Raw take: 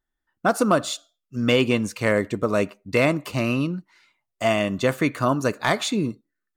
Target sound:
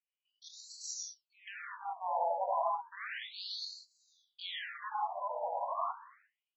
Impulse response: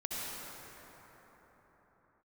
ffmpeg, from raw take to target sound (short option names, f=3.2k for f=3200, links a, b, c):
-filter_complex "[0:a]equalizer=f=520:t=o:w=0.24:g=-4,asplit=2[a][b];[b]aeval=exprs='clip(val(0),-1,0.0376)':c=same,volume=-6dB[c];[a][c]amix=inputs=2:normalize=0,asetrate=72056,aresample=44100,atempo=0.612027[d];[1:a]atrim=start_sample=2205,afade=t=out:st=0.25:d=0.01,atrim=end_sample=11466[e];[d][e]afir=irnorm=-1:irlink=0,flanger=delay=8.4:depth=5.6:regen=-82:speed=0.74:shape=sinusoidal,afftfilt=real='re*between(b*sr/1024,690*pow(5600/690,0.5+0.5*sin(2*PI*0.32*pts/sr))/1.41,690*pow(5600/690,0.5+0.5*sin(2*PI*0.32*pts/sr))*1.41)':imag='im*between(b*sr/1024,690*pow(5600/690,0.5+0.5*sin(2*PI*0.32*pts/sr))/1.41,690*pow(5600/690,0.5+0.5*sin(2*PI*0.32*pts/sr))*1.41)':win_size=1024:overlap=0.75,volume=-5dB"